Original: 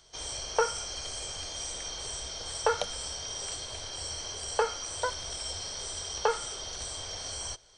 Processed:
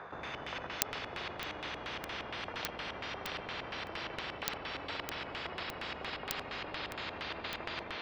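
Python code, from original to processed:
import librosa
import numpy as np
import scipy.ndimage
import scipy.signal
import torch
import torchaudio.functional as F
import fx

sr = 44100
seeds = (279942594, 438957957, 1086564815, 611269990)

p1 = fx.speed_glide(x, sr, from_pct=112, to_pct=82)
p2 = fx.over_compress(p1, sr, threshold_db=-38.0, ratio=-0.5)
p3 = p1 + (p2 * 10.0 ** (1.5 / 20.0))
p4 = fx.peak_eq(p3, sr, hz=750.0, db=12.5, octaves=1.3)
p5 = fx.room_flutter(p4, sr, wall_m=9.8, rt60_s=0.88)
p6 = fx.level_steps(p5, sr, step_db=11)
p7 = fx.echo_pitch(p6, sr, ms=191, semitones=-3, count=3, db_per_echo=-3.0)
p8 = fx.bandpass_edges(p7, sr, low_hz=160.0, high_hz=2500.0)
p9 = fx.filter_lfo_lowpass(p8, sr, shape='square', hz=4.3, low_hz=650.0, high_hz=1700.0, q=1.4)
p10 = fx.buffer_crackle(p9, sr, first_s=0.82, period_s=0.61, block=64, kind='zero')
p11 = fx.spectral_comp(p10, sr, ratio=10.0)
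y = p11 * 10.0 ** (1.5 / 20.0)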